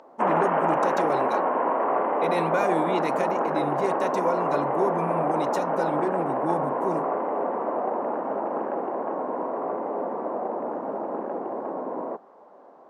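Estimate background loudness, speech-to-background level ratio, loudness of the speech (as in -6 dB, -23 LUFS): -26.5 LUFS, -4.0 dB, -30.5 LUFS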